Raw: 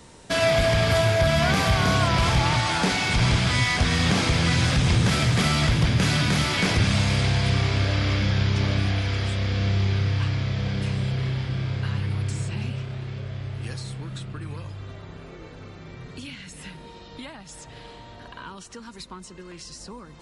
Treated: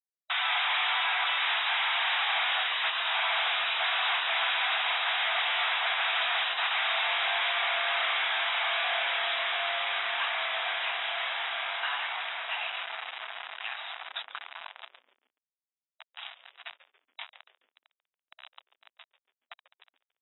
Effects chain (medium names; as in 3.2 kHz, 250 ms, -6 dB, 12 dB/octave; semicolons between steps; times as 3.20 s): spectral gate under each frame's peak -15 dB weak; companded quantiser 2-bit; brick-wall FIR band-pass 640–3900 Hz; on a send: frequency-shifting echo 141 ms, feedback 40%, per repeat -140 Hz, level -17 dB